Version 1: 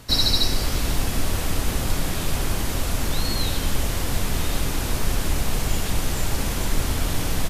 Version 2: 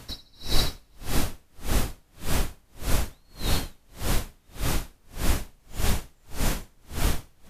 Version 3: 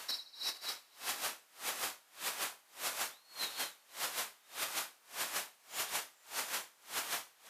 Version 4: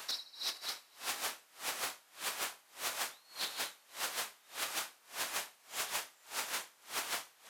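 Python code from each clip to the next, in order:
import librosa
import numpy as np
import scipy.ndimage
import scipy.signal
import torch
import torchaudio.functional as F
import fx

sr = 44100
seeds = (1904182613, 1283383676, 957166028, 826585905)

y1 = fx.echo_alternate(x, sr, ms=127, hz=2300.0, feedback_pct=60, wet_db=-3.0)
y1 = y1 * 10.0 ** (-40 * (0.5 - 0.5 * np.cos(2.0 * np.pi * 1.7 * np.arange(len(y1)) / sr)) / 20.0)
y2 = scipy.signal.sosfilt(scipy.signal.butter(2, 880.0, 'highpass', fs=sr, output='sos'), y1)
y2 = fx.over_compress(y2, sr, threshold_db=-37.0, ratio=-0.5)
y2 = fx.doubler(y2, sr, ms=27.0, db=-11)
y2 = y2 * librosa.db_to_amplitude(-1.0)
y3 = fx.doppler_dist(y2, sr, depth_ms=0.71)
y3 = y3 * librosa.db_to_amplitude(1.0)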